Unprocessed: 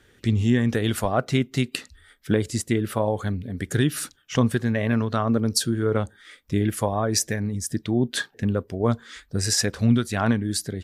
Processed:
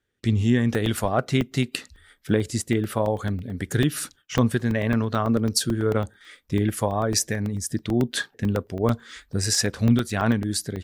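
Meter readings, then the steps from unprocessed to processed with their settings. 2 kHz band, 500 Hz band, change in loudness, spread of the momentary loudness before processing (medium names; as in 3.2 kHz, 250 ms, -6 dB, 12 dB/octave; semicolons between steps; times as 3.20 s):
0.0 dB, 0.0 dB, 0.0 dB, 7 LU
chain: gate with hold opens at -44 dBFS; crackling interface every 0.11 s, samples 64, zero, from 0.75 s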